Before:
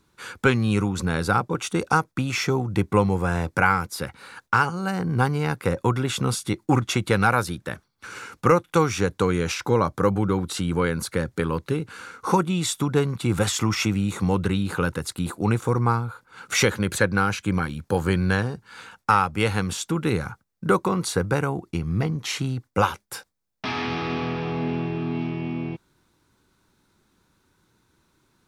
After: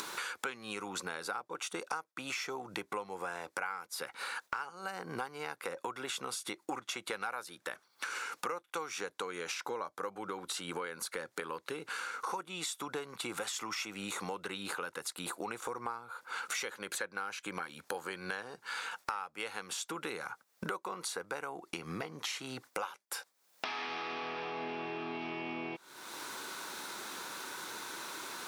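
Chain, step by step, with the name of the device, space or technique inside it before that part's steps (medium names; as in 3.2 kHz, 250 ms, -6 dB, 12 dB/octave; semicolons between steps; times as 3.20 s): high-pass 560 Hz 12 dB/octave; upward and downward compression (upward compressor, threshold -25 dBFS; compression 5:1, threshold -40 dBFS, peak gain reduction 22.5 dB); trim +2.5 dB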